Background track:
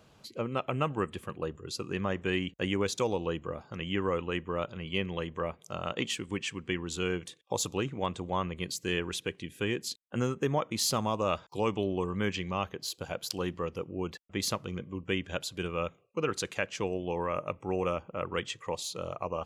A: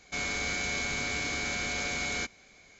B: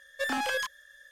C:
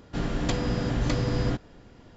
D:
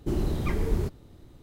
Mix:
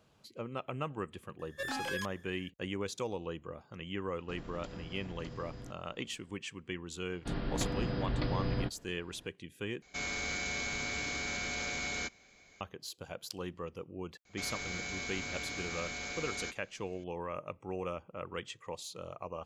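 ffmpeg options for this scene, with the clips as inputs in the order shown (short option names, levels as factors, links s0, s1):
-filter_complex "[3:a]asplit=2[s0][s1];[1:a]asplit=2[s2][s3];[0:a]volume=0.422[s4];[s0]acompressor=threshold=0.0447:ratio=6:attack=3.2:release=140:knee=1:detection=peak[s5];[s1]aresample=11025,aresample=44100[s6];[s4]asplit=2[s7][s8];[s7]atrim=end=9.824[s9];[s2]atrim=end=2.79,asetpts=PTS-STARTPTS,volume=0.596[s10];[s8]atrim=start=12.606[s11];[2:a]atrim=end=1.11,asetpts=PTS-STARTPTS,volume=0.422,afade=t=in:d=0.004:c=hsin,afade=t=out:st=1.106:d=0.004:c=hsin,adelay=1390[s12];[s5]atrim=end=2.16,asetpts=PTS-STARTPTS,volume=0.178,afade=t=in:d=0.004:c=hsin,afade=t=out:st=2.156:d=0.004:c=hsin,adelay=4150[s13];[s6]atrim=end=2.16,asetpts=PTS-STARTPTS,volume=0.422,afade=t=in:d=0.004:c=hsin,afade=t=out:st=2.156:d=0.004:c=hsin,adelay=7120[s14];[s3]atrim=end=2.79,asetpts=PTS-STARTPTS,volume=0.398,afade=t=in:d=0.004:c=hsin,afade=t=out:st=2.786:d=0.004:c=hsin,adelay=14250[s15];[s9][s10]acrossfade=d=0.004:c1=hsin:c2=hsin[s16];[s16][s11]acrossfade=d=0.004:c1=hsin:c2=hsin[s17];[s17][s12][s13][s14][s15]amix=inputs=5:normalize=0"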